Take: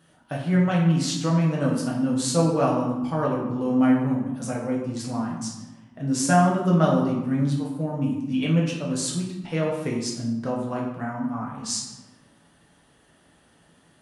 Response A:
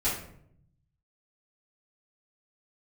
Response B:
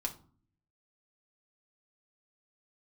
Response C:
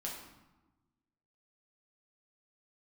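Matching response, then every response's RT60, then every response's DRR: C; 0.70 s, 0.45 s, 1.1 s; -12.5 dB, 0.5 dB, -3.5 dB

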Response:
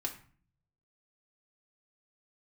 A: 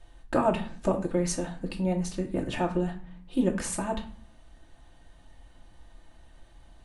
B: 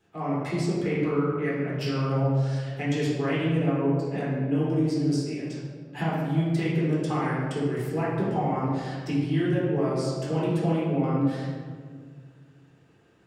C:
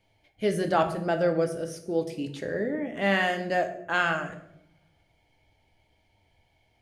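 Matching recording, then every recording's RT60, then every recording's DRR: A; 0.45 s, 1.8 s, 0.75 s; -1.0 dB, -8.5 dB, 5.5 dB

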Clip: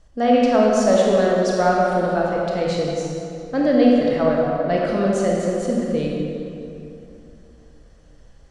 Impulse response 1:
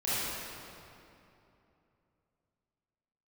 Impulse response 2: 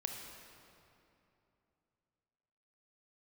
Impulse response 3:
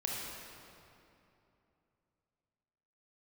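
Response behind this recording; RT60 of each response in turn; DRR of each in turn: 3; 2.9 s, 2.9 s, 2.9 s; -12.0 dB, 2.0 dB, -3.0 dB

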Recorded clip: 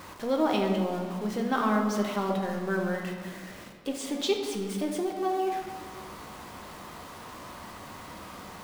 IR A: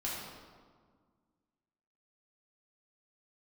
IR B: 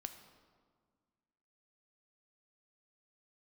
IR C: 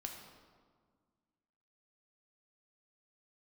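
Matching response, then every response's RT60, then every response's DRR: C; 1.7 s, 1.7 s, 1.7 s; -7.0 dB, 7.0 dB, 1.5 dB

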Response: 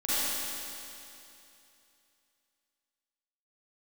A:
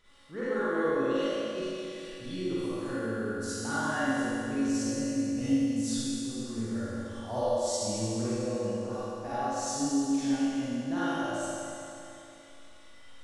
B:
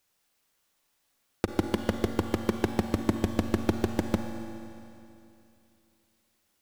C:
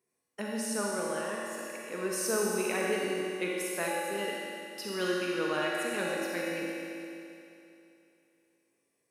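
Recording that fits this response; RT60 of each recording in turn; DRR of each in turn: A; 2.8 s, 2.8 s, 2.8 s; -13.0 dB, 5.5 dB, -4.0 dB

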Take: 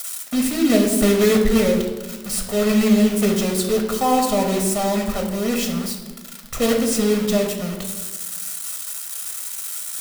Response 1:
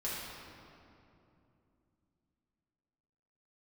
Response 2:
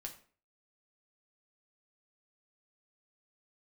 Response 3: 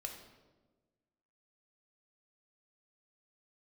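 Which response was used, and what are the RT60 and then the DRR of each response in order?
3; 2.8 s, 0.45 s, 1.3 s; -8.5 dB, 2.0 dB, 2.0 dB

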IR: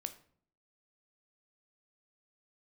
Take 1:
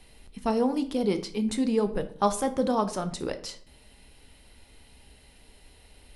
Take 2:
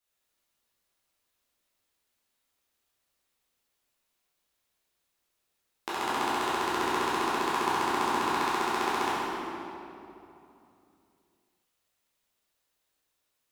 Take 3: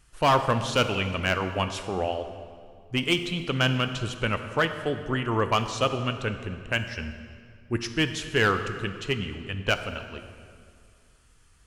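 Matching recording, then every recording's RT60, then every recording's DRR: 1; 0.55 s, 2.9 s, 2.1 s; 9.0 dB, -10.0 dB, 8.0 dB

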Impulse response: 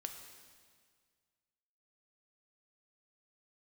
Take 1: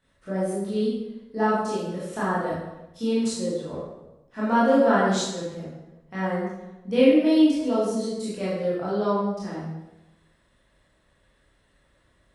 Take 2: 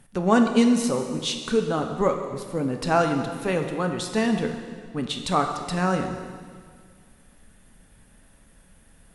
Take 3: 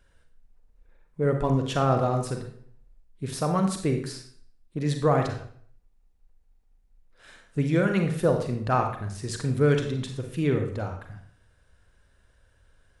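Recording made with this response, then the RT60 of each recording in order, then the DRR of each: 2; 1.0 s, 1.8 s, 0.55 s; -9.0 dB, 4.5 dB, 4.0 dB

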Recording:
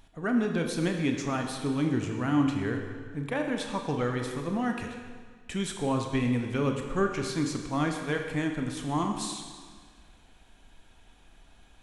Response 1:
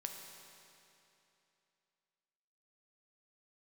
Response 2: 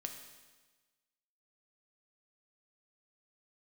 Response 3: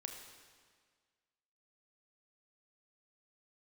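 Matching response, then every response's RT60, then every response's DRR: 3; 2.9 s, 1.3 s, 1.7 s; 2.5 dB, 3.5 dB, 3.0 dB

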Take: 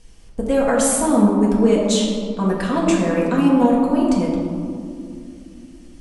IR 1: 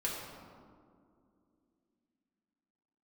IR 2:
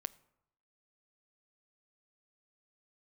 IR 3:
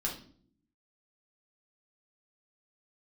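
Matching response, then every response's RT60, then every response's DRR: 1; 2.4 s, 0.80 s, no single decay rate; -5.5 dB, 16.0 dB, -2.5 dB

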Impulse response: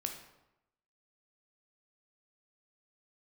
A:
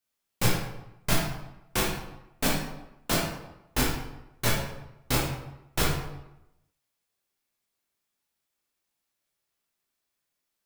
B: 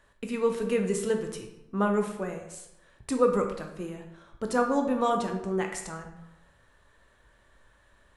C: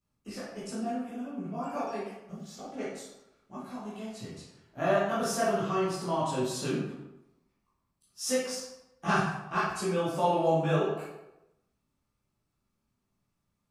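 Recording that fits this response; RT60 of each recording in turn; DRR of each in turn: B; 0.90 s, 0.90 s, 0.90 s; -4.5 dB, 3.5 dB, -10.5 dB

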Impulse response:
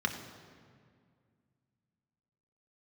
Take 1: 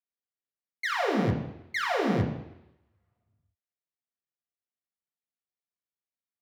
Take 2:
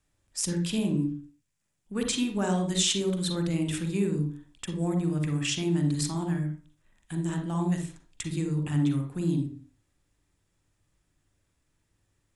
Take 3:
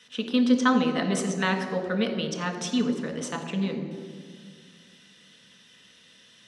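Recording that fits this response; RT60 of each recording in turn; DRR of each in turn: 3; 0.85 s, 0.40 s, 2.1 s; -0.5 dB, 5.0 dB, 3.0 dB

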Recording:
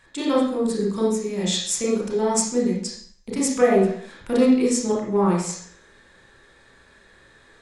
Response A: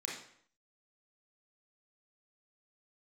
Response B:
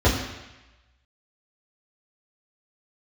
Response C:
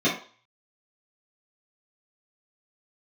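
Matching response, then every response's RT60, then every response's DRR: A; 0.60 s, 1.0 s, 0.45 s; -3.5 dB, -7.5 dB, -10.5 dB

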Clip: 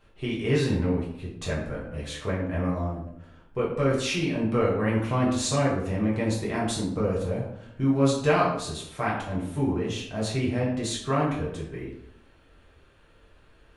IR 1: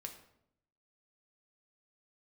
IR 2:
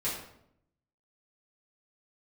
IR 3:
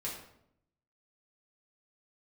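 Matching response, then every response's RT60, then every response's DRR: 3; 0.75 s, 0.75 s, 0.75 s; 3.0 dB, -10.0 dB, -6.0 dB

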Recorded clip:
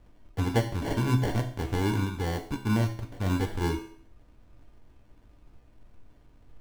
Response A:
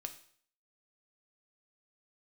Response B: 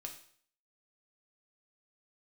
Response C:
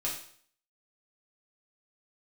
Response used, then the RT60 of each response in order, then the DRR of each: B; 0.55 s, 0.55 s, 0.55 s; 6.0 dB, 2.0 dB, -5.5 dB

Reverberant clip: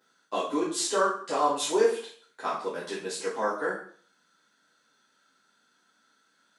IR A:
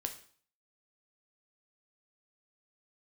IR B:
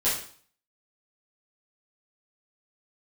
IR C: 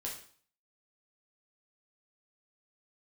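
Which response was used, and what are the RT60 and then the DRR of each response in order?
B; 0.50 s, 0.50 s, 0.50 s; 5.0 dB, -12.0 dB, -3.5 dB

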